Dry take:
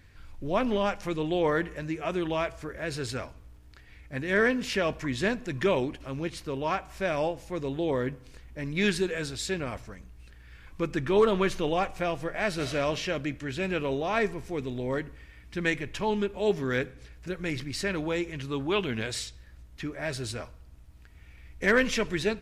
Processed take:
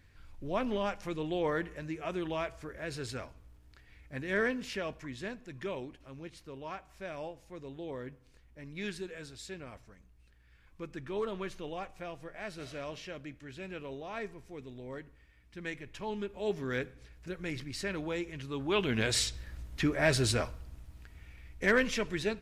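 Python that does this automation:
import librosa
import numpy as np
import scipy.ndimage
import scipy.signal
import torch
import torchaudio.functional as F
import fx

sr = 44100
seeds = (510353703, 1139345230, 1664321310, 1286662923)

y = fx.gain(x, sr, db=fx.line((4.34, -6.0), (5.28, -13.0), (15.57, -13.0), (16.73, -6.0), (18.54, -6.0), (19.26, 6.0), (20.41, 6.0), (21.9, -5.0)))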